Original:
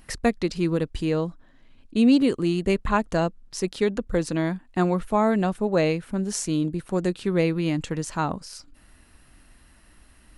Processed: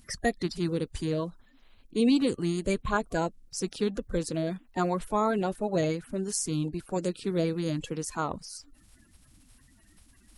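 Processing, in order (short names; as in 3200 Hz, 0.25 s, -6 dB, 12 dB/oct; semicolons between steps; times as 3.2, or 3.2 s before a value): bin magnitudes rounded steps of 30 dB; high shelf 6700 Hz +8 dB; gain -5 dB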